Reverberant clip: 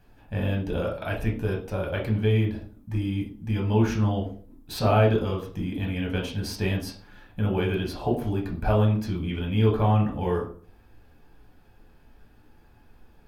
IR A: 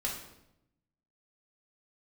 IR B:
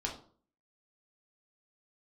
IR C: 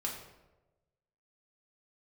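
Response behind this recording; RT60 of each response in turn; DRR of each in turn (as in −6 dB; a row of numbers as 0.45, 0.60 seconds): B; 0.85, 0.45, 1.1 seconds; −4.0, −1.5, −2.5 decibels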